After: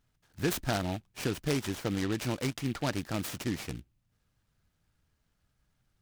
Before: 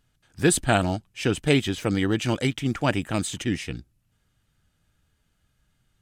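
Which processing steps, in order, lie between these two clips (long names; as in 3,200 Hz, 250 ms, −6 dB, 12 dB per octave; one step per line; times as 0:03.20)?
downward compressor 2 to 1, threshold −23 dBFS, peak gain reduction 5.5 dB
short delay modulated by noise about 2,500 Hz, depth 0.067 ms
level −5.5 dB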